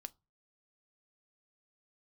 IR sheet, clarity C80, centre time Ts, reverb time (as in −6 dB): 35.5 dB, 1 ms, 0.25 s